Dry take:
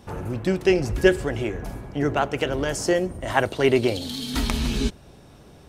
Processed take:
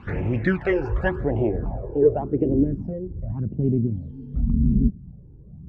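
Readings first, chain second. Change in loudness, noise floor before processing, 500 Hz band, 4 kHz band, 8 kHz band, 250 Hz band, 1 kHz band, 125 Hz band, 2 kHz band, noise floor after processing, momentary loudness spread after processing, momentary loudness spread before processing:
0.0 dB, −49 dBFS, −2.0 dB, below −20 dB, below −35 dB, +2.0 dB, −7.5 dB, +5.0 dB, −5.0 dB, −45 dBFS, 11 LU, 9 LU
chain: in parallel at +1 dB: downward compressor, threshold −29 dBFS, peak gain reduction 17 dB
on the sum: low-pass filter sweep 2,000 Hz → 190 Hz, 0:00.43–0:03.07
all-pass phaser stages 12, 0.89 Hz, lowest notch 200–1,500 Hz
every ending faded ahead of time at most 560 dB per second

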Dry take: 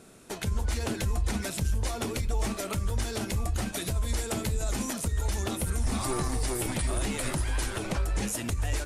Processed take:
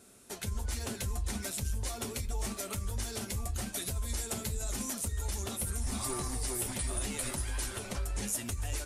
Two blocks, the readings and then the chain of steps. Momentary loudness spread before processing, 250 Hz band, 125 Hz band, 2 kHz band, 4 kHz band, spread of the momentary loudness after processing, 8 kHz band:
2 LU, −7.5 dB, −7.0 dB, −6.5 dB, −4.0 dB, 3 LU, −0.5 dB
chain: high-shelf EQ 4,700 Hz +9.5 dB
notch comb filter 160 Hz
level −6.5 dB

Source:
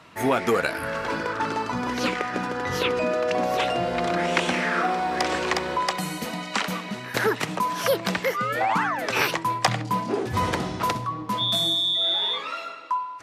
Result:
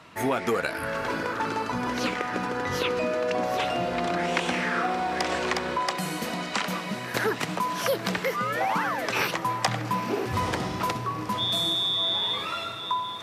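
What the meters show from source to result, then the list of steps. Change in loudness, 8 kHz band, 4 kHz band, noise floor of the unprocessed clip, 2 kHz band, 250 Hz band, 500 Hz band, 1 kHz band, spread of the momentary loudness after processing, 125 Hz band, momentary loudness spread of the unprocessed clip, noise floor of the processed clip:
−2.5 dB, −2.0 dB, −2.5 dB, −36 dBFS, −2.5 dB, −2.0 dB, −2.5 dB, −2.5 dB, 6 LU, −2.0 dB, 7 LU, −35 dBFS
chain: downward compressor 1.5 to 1, threshold −28 dBFS, peak gain reduction 5 dB
feedback delay with all-pass diffusion 926 ms, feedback 56%, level −12 dB

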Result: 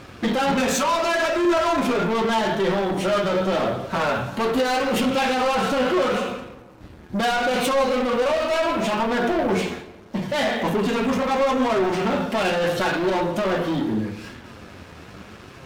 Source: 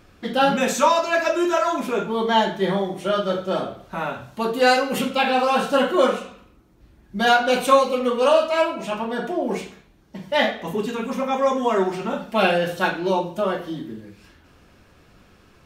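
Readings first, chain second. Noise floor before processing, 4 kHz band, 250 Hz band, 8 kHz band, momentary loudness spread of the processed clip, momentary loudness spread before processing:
−54 dBFS, −0.5 dB, +2.5 dB, +1.5 dB, 11 LU, 11 LU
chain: high-pass filter 67 Hz
high-shelf EQ 6,600 Hz −8.5 dB
in parallel at +1 dB: downward compressor, threshold −27 dBFS, peak gain reduction 16.5 dB
on the sum: brickwall limiter −13.5 dBFS, peak gain reduction 11 dB
leveller curve on the samples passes 3
flanger 0.77 Hz, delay 7.2 ms, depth 4.8 ms, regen +56%
on a send: tape delay 167 ms, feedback 49%, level −15 dB, low-pass 2,400 Hz

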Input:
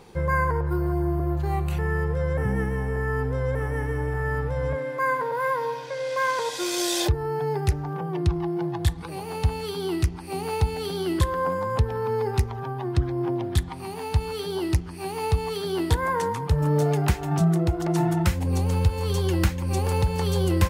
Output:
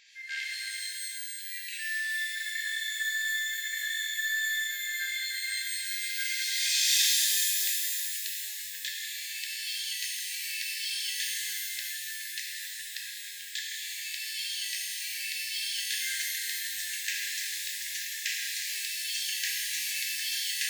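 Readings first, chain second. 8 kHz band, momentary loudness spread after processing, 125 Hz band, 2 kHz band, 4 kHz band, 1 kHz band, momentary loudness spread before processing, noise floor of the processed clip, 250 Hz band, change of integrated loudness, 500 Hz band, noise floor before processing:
+8.0 dB, 9 LU, below −40 dB, +2.0 dB, +7.0 dB, below −40 dB, 5 LU, −40 dBFS, below −40 dB, −4.0 dB, below −40 dB, −35 dBFS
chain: wave folding −14.5 dBFS
linear-phase brick-wall band-pass 1,600–7,800 Hz
reverb with rising layers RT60 3.3 s, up +12 semitones, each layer −2 dB, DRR −4 dB

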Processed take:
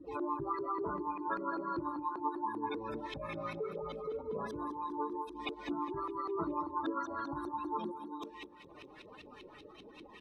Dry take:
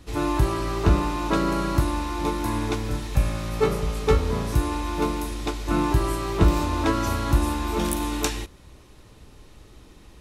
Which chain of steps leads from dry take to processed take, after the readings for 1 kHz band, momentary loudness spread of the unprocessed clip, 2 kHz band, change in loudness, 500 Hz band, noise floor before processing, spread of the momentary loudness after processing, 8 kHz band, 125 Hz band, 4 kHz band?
−8.0 dB, 6 LU, −14.0 dB, −14.0 dB, −12.5 dB, −49 dBFS, 17 LU, below −30 dB, −28.0 dB, −18.5 dB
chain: RIAA equalisation recording
notch filter 7,000 Hz, Q 13
gate on every frequency bin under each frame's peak −10 dB strong
low-shelf EQ 61 Hz −12 dB
mains-hum notches 60/120 Hz
downward compressor 4 to 1, threshold −42 dBFS, peak gain reduction 24.5 dB
flanger 1.3 Hz, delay 3 ms, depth 4.4 ms, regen +53%
auto-filter low-pass saw up 5.1 Hz 300–3,100 Hz
on a send: repeating echo 206 ms, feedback 52%, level −14 dB
on the sum: level +6.5 dB

